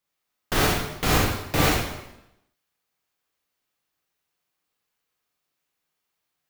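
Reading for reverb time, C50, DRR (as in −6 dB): 0.90 s, 0.0 dB, −3.0 dB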